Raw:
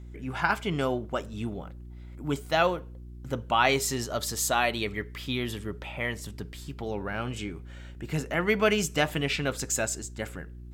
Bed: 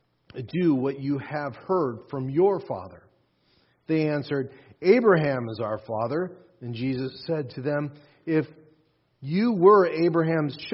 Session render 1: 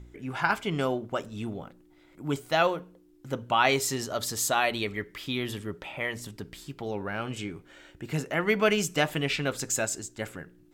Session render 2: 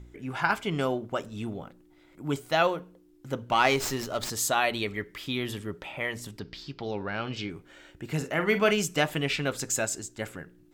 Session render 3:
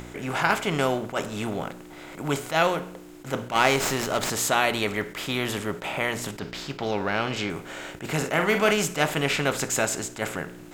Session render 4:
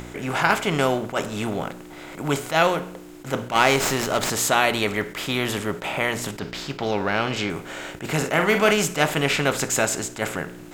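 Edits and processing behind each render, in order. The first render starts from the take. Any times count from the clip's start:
de-hum 60 Hz, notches 4
3.36–4.30 s: sliding maximum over 3 samples; 6.39–7.50 s: resonant high shelf 6.8 kHz -13.5 dB, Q 3; 8.17–8.71 s: doubling 45 ms -10 dB
spectral levelling over time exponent 0.6; attacks held to a fixed rise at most 250 dB/s
trim +3 dB; peak limiter -2 dBFS, peak gain reduction 1.5 dB

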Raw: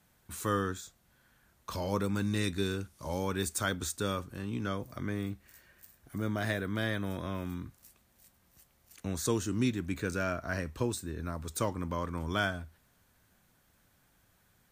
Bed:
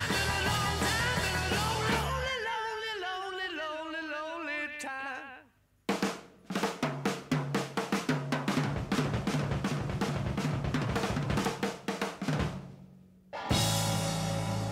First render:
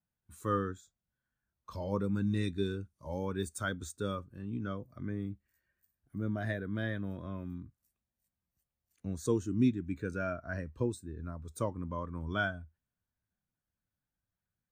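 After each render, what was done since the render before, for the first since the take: spectral contrast expander 1.5:1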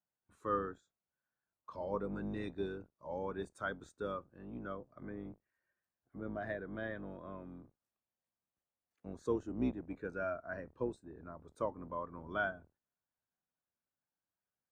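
octave divider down 2 oct, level 0 dB; band-pass filter 790 Hz, Q 0.79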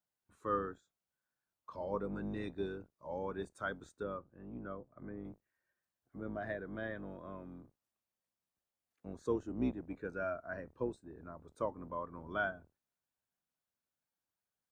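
4.03–5.25 s: distance through air 450 m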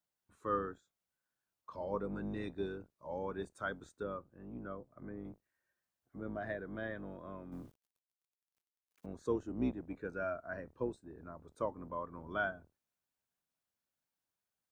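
7.52–9.06 s: companding laws mixed up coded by mu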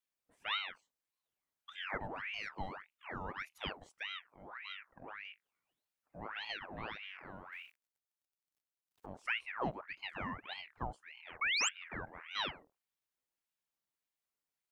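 11.41–11.69 s: painted sound rise 1.6–5.6 kHz -30 dBFS; ring modulator with a swept carrier 1.5 kHz, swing 75%, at 1.7 Hz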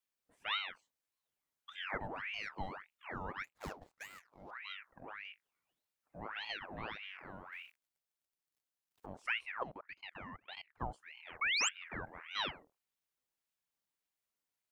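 3.44–4.51 s: median filter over 15 samples; 9.63–10.80 s: level held to a coarse grid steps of 24 dB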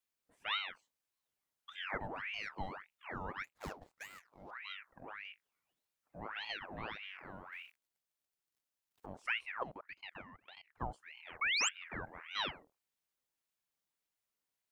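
10.21–10.72 s: compression 5:1, threshold -51 dBFS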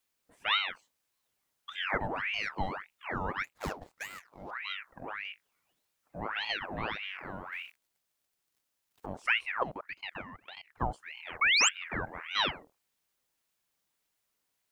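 trim +8.5 dB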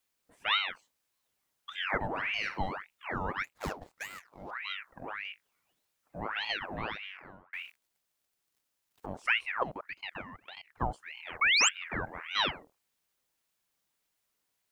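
2.09–2.58 s: flutter echo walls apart 9.2 m, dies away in 0.33 s; 6.49–7.53 s: fade out equal-power

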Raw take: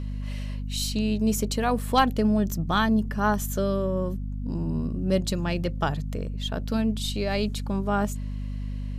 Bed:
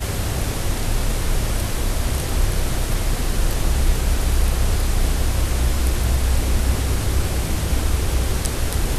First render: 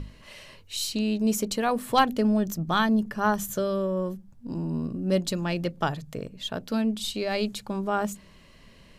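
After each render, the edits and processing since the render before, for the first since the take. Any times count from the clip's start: hum notches 50/100/150/200/250 Hz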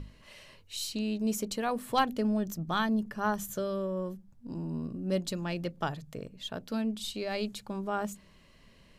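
trim -6 dB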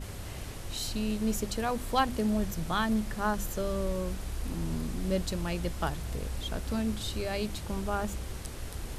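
add bed -17.5 dB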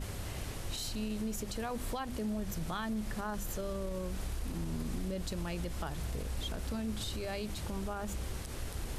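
compression, threshold -30 dBFS, peak gain reduction 9.5 dB; peak limiter -28.5 dBFS, peak gain reduction 7.5 dB

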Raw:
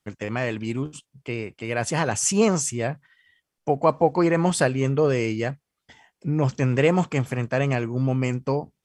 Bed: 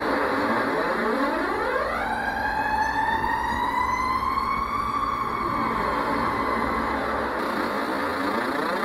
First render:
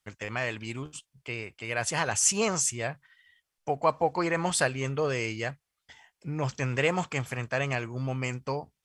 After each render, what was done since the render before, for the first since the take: peaking EQ 240 Hz -11.5 dB 2.8 oct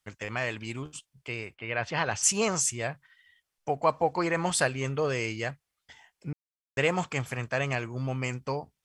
1.54–2.22 s: low-pass 2.9 kHz -> 5.4 kHz 24 dB/octave; 6.33–6.77 s: mute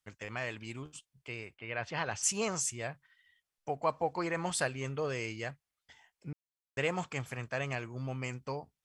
trim -6.5 dB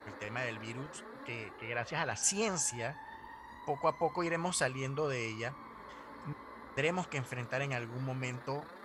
add bed -25.5 dB

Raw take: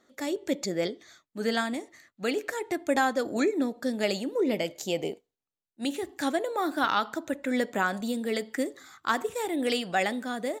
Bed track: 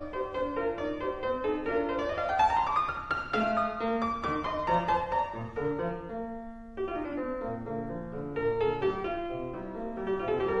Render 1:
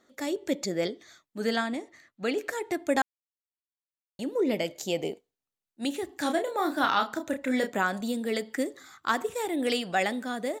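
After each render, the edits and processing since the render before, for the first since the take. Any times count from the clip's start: 1.56–2.38 s: treble shelf 7.7 kHz -11 dB; 3.02–4.19 s: mute; 6.22–7.70 s: doubling 31 ms -6.5 dB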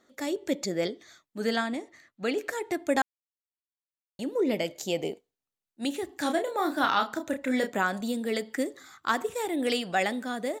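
no audible change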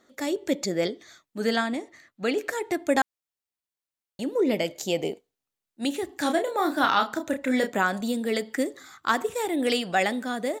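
trim +3 dB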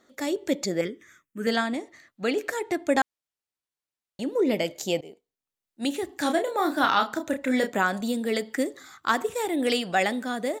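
0.81–1.47 s: static phaser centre 1.8 kHz, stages 4; 2.63–4.35 s: treble shelf 12 kHz -8.5 dB; 5.01–5.86 s: fade in, from -19.5 dB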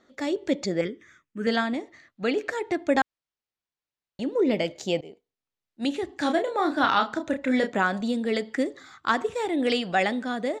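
low-pass 5.3 kHz 12 dB/octave; bass shelf 130 Hz +5 dB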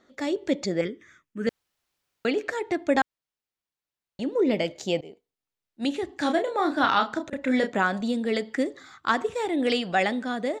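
1.49–2.25 s: room tone; 6.28–7.33 s: slow attack 189 ms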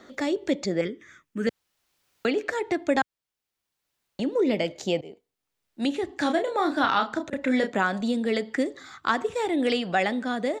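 three bands compressed up and down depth 40%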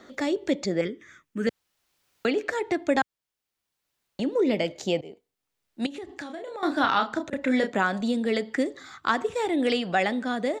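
5.86–6.63 s: compression 12:1, threshold -33 dBFS

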